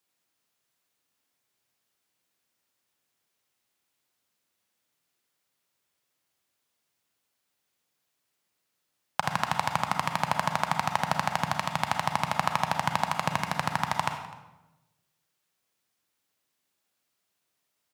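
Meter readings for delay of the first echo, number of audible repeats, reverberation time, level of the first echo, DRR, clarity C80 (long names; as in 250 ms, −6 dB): 253 ms, 1, 1.0 s, −21.0 dB, 5.0 dB, 8.5 dB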